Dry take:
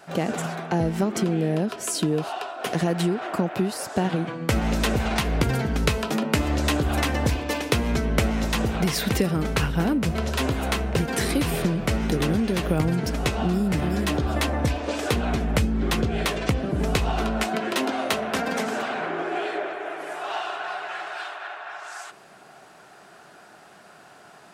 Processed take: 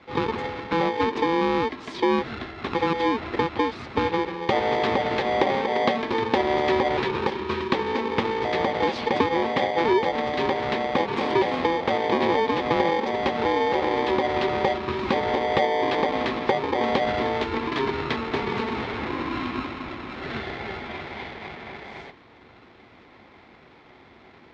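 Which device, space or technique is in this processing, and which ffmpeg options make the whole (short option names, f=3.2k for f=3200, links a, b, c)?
ring modulator pedal into a guitar cabinet: -filter_complex "[0:a]asettb=1/sr,asplit=3[a][b][c];[a]atrim=end=6.974[d];[b]atrim=start=6.97:end=8.45,asetpts=PTS-STARTPTS,afade=t=in:d=0.004:c=qsin,afade=t=out:st=1.476:d=0.004:c=qsin,highpass=f=140:w=0.5412,highpass=f=140:w=1.3066[e];[c]atrim=start=8.446[f];[d][e]acrossfade=d=0.004:c1=hsin:c2=qsin[g];[g][f]acrossfade=d=0.004:c1=qsin:c2=hsin,aeval=exprs='val(0)*sgn(sin(2*PI*670*n/s))':c=same,highpass=79,equalizer=f=240:t=q:w=4:g=5,equalizer=f=370:t=q:w=4:g=7,equalizer=f=1.4k:t=q:w=4:g=-8,equalizer=f=2.8k:t=q:w=4:g=-6,lowpass=f=3.6k:w=0.5412,lowpass=f=3.6k:w=1.3066"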